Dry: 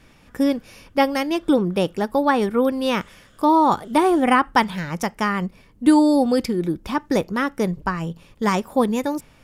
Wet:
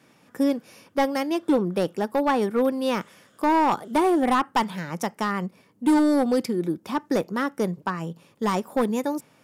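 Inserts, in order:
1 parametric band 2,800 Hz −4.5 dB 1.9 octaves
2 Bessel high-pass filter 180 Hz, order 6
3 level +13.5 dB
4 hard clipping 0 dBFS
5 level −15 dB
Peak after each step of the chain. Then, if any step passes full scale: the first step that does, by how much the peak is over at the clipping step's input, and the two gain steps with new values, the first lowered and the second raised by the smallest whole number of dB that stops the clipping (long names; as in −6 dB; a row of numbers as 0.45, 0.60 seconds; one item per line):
−5.0, −4.0, +9.5, 0.0, −15.0 dBFS
step 3, 9.5 dB
step 3 +3.5 dB, step 5 −5 dB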